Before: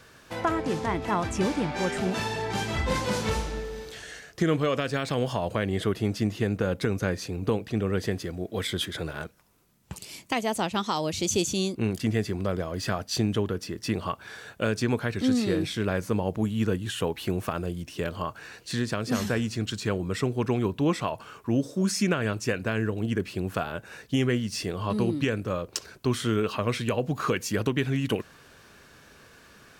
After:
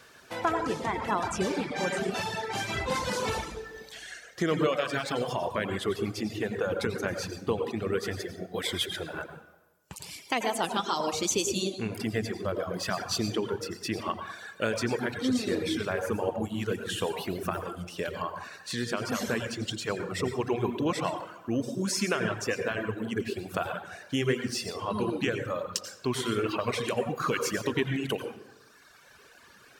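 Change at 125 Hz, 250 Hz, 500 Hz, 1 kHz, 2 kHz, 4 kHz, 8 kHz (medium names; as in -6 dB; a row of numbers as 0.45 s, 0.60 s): -7.5 dB, -4.5 dB, -1.5 dB, 0.0 dB, -0.5 dB, -0.5 dB, 0.0 dB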